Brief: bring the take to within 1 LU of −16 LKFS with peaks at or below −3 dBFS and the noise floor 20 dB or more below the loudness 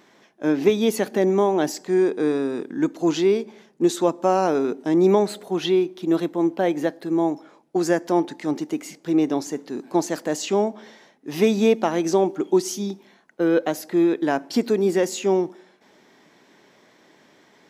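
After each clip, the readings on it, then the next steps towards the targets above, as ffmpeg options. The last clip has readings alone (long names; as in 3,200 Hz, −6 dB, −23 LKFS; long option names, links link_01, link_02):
integrated loudness −22.0 LKFS; sample peak −5.5 dBFS; target loudness −16.0 LKFS
→ -af "volume=6dB,alimiter=limit=-3dB:level=0:latency=1"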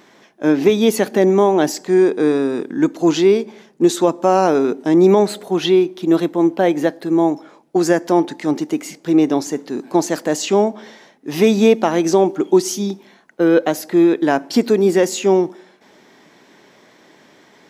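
integrated loudness −16.5 LKFS; sample peak −3.0 dBFS; background noise floor −51 dBFS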